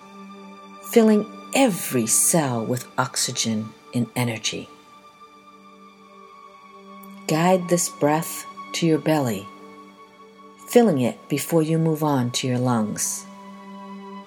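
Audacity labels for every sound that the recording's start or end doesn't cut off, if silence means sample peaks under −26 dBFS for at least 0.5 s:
0.870000	4.600000	sound
7.040000	9.410000	sound
10.700000	13.200000	sound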